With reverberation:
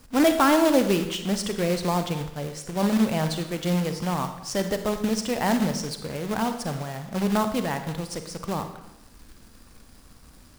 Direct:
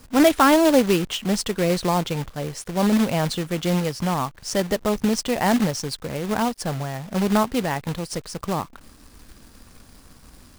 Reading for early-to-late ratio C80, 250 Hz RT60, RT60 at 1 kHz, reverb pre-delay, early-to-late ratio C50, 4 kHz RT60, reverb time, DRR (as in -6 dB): 11.0 dB, 0.90 s, 0.85 s, 35 ms, 8.5 dB, 0.75 s, 0.85 s, 7.5 dB